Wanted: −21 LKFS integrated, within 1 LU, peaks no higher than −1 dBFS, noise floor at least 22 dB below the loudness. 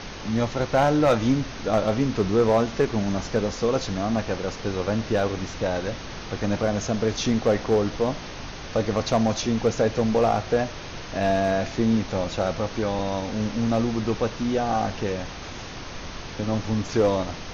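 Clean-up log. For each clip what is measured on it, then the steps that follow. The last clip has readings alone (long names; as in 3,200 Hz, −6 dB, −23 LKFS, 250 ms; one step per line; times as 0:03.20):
share of clipped samples 0.3%; peaks flattened at −12.5 dBFS; background noise floor −37 dBFS; target noise floor −47 dBFS; integrated loudness −24.5 LKFS; sample peak −12.5 dBFS; target loudness −21.0 LKFS
→ clipped peaks rebuilt −12.5 dBFS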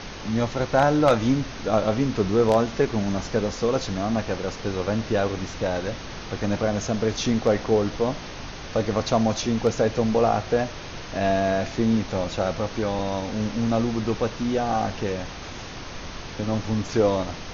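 share of clipped samples 0.0%; background noise floor −37 dBFS; target noise floor −47 dBFS
→ noise reduction from a noise print 10 dB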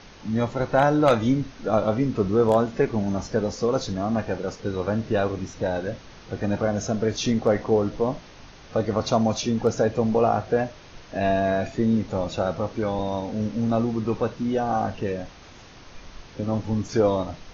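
background noise floor −46 dBFS; target noise floor −47 dBFS
→ noise reduction from a noise print 6 dB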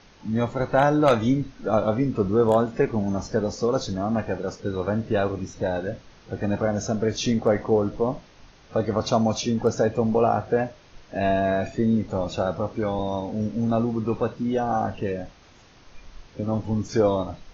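background noise floor −52 dBFS; integrated loudness −24.5 LKFS; sample peak −3.5 dBFS; target loudness −21.0 LKFS
→ level +3.5 dB
brickwall limiter −1 dBFS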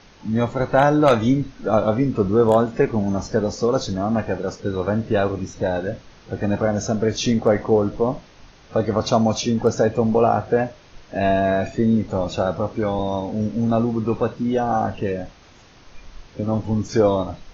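integrated loudness −21.0 LKFS; sample peak −1.0 dBFS; background noise floor −49 dBFS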